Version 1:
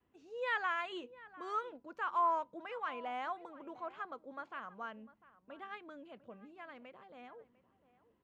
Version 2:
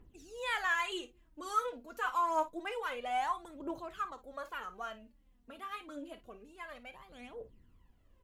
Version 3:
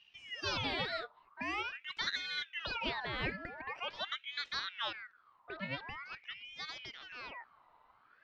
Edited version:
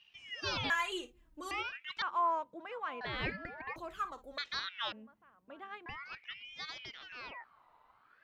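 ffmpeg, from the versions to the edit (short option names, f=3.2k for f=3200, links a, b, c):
-filter_complex "[1:a]asplit=2[a][b];[0:a]asplit=2[c][d];[2:a]asplit=5[e][f][g][h][i];[e]atrim=end=0.702[j];[a]atrim=start=0.698:end=1.512[k];[f]atrim=start=1.508:end=2.022[l];[c]atrim=start=2.018:end=3.012[m];[g]atrim=start=3.008:end=3.762[n];[b]atrim=start=3.758:end=4.382[o];[h]atrim=start=4.378:end=4.922[p];[d]atrim=start=4.918:end=5.862[q];[i]atrim=start=5.858[r];[j][k]acrossfade=d=0.004:c1=hsin:c2=hsin[s];[s][l]acrossfade=d=0.004:c1=hsin:c2=hsin[t];[t][m]acrossfade=d=0.004:c1=hsin:c2=hsin[u];[u][n]acrossfade=d=0.004:c1=hsin:c2=hsin[v];[v][o]acrossfade=d=0.004:c1=hsin:c2=hsin[w];[w][p]acrossfade=d=0.004:c1=hsin:c2=hsin[x];[x][q]acrossfade=d=0.004:c1=hsin:c2=hsin[y];[y][r]acrossfade=d=0.004:c1=hsin:c2=hsin"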